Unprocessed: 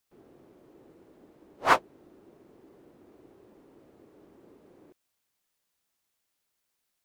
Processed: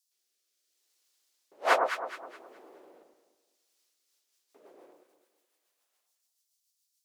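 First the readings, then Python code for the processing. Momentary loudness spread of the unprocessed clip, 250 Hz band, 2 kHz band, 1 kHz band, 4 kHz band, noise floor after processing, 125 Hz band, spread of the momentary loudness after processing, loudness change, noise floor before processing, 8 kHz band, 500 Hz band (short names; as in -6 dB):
5 LU, -7.0 dB, -1.0 dB, -2.0 dB, -1.0 dB, -80 dBFS, under -20 dB, 19 LU, -3.0 dB, -80 dBFS, -1.0 dB, +3.0 dB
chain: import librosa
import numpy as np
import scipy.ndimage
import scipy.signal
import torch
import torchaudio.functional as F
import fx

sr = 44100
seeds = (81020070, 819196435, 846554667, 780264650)

y = fx.filter_lfo_highpass(x, sr, shape='square', hz=0.33, low_hz=600.0, high_hz=5200.0, q=1.4)
y = fx.rotary_switch(y, sr, hz=0.7, then_hz=7.0, switch_at_s=3.63)
y = fx.echo_alternate(y, sr, ms=105, hz=1200.0, feedback_pct=59, wet_db=-2.5)
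y = y * 10.0 ** (4.0 / 20.0)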